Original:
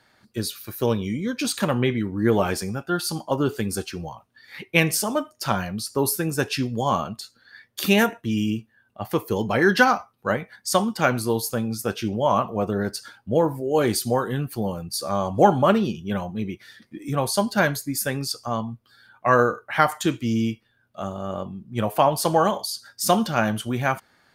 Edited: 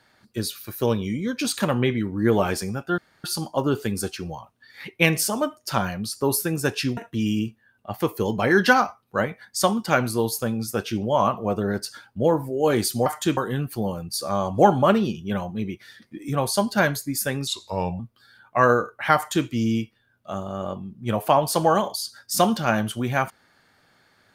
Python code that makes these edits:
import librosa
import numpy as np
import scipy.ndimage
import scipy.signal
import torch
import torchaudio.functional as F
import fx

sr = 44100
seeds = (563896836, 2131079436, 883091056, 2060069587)

y = fx.edit(x, sr, fx.insert_room_tone(at_s=2.98, length_s=0.26),
    fx.cut(start_s=6.71, length_s=1.37),
    fx.speed_span(start_s=18.27, length_s=0.42, speed=0.8),
    fx.duplicate(start_s=19.85, length_s=0.31, to_s=14.17), tone=tone)